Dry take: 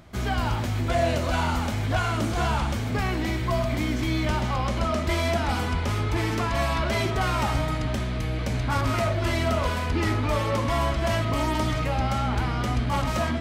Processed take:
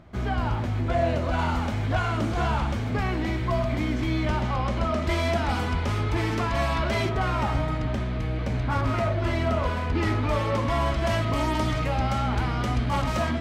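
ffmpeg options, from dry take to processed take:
-af "asetnsamples=n=441:p=0,asendcmd='1.39 lowpass f 2900;5.02 lowpass f 5100;7.09 lowpass f 2100;9.95 lowpass f 3900;10.86 lowpass f 6900',lowpass=f=1.7k:p=1"

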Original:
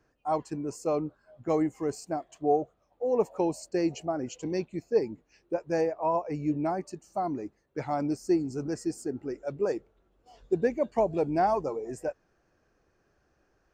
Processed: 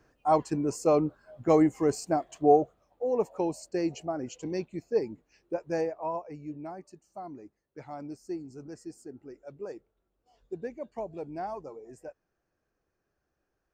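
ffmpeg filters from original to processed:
-af "volume=5dB,afade=t=out:st=2.48:d=0.68:silence=0.446684,afade=t=out:st=5.73:d=0.68:silence=0.354813"

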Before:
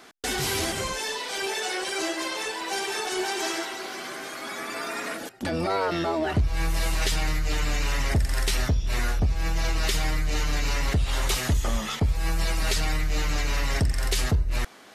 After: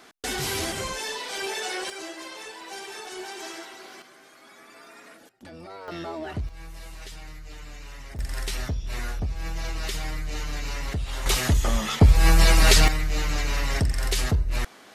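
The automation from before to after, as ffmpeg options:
-af "asetnsamples=n=441:p=0,asendcmd='1.9 volume volume -9dB;4.02 volume volume -16dB;5.88 volume volume -8dB;6.49 volume volume -16dB;8.19 volume volume -5.5dB;11.26 volume volume 2.5dB;12 volume volume 9dB;12.88 volume volume 0dB',volume=-1.5dB"

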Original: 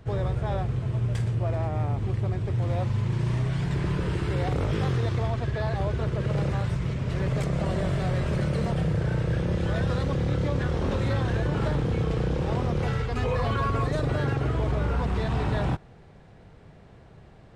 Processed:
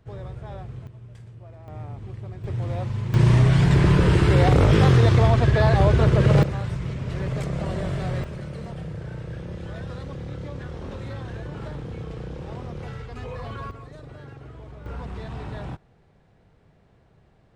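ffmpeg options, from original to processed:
-af "asetnsamples=n=441:p=0,asendcmd='0.87 volume volume -17dB;1.68 volume volume -9dB;2.44 volume volume -1.5dB;3.14 volume volume 10dB;6.43 volume volume -1dB;8.24 volume volume -8.5dB;13.71 volume volume -16dB;14.86 volume volume -8dB',volume=-9dB"

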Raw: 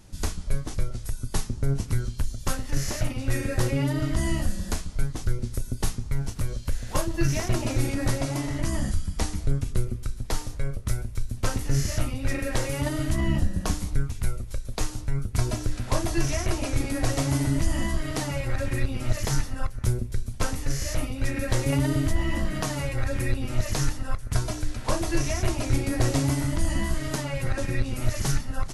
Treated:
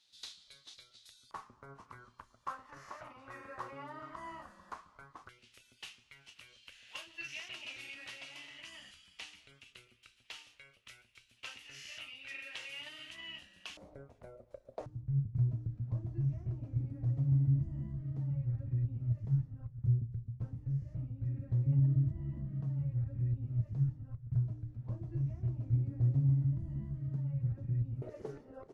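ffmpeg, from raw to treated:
-af "asetnsamples=n=441:p=0,asendcmd='1.31 bandpass f 1100;5.29 bandpass f 2800;13.77 bandpass f 590;14.86 bandpass f 130;28.02 bandpass f 440',bandpass=f=3.8k:t=q:w=5.2:csg=0"

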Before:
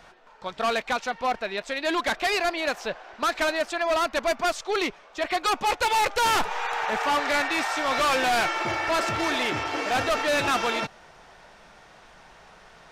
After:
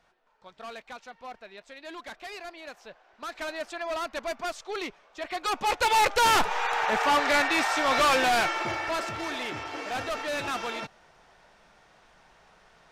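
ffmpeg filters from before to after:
-af "volume=1dB,afade=t=in:st=3.1:d=0.55:silence=0.398107,afade=t=in:st=5.31:d=0.69:silence=0.354813,afade=t=out:st=8.04:d=1.08:silence=0.375837"

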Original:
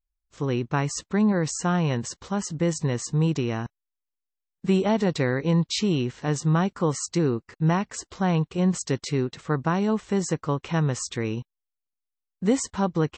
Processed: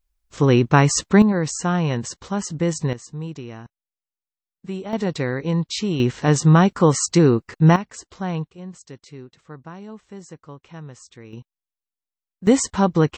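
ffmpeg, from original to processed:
-af "asetnsamples=n=441:p=0,asendcmd='1.22 volume volume 2.5dB;2.93 volume volume -8.5dB;4.93 volume volume 0dB;6 volume volume 8.5dB;7.76 volume volume -3dB;8.5 volume volume -14dB;11.33 volume volume -6dB;12.47 volume volume 6.5dB',volume=10.5dB"

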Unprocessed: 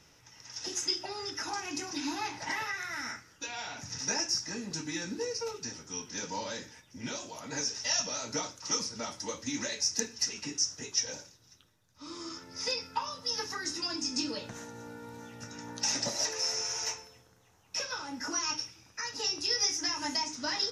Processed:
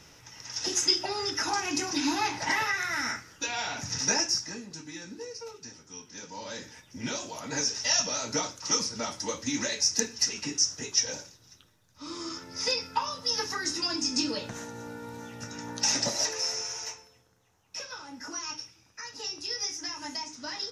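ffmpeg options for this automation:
-af "volume=17dB,afade=t=out:st=4:d=0.69:silence=0.237137,afade=t=in:st=6.35:d=0.47:silence=0.316228,afade=t=out:st=16:d=0.91:silence=0.375837"

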